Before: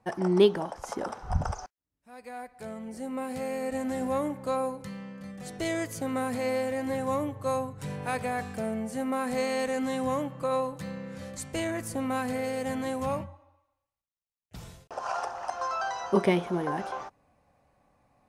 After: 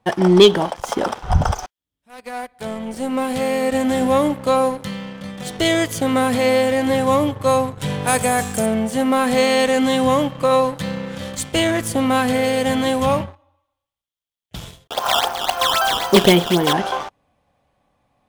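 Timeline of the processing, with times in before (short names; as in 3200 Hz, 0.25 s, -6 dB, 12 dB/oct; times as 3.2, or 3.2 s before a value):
8.07–8.66 resonant high shelf 5300 Hz +10.5 dB, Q 1.5
14.84–16.73 decimation with a swept rate 12×, swing 160% 3.8 Hz
whole clip: bell 3300 Hz +12 dB 0.35 oct; sample leveller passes 2; gain +5 dB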